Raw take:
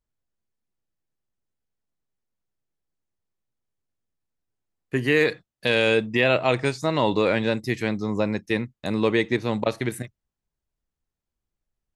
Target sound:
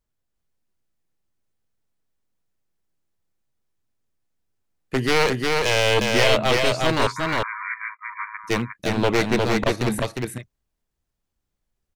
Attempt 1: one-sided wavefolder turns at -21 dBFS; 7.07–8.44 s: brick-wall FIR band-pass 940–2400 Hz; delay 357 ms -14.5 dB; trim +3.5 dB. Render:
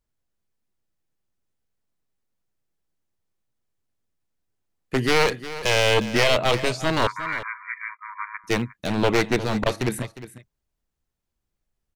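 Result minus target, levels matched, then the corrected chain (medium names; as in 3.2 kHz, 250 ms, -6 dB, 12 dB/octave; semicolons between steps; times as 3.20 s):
echo-to-direct -11.5 dB
one-sided wavefolder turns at -21 dBFS; 7.07–8.44 s: brick-wall FIR band-pass 940–2400 Hz; delay 357 ms -3 dB; trim +3.5 dB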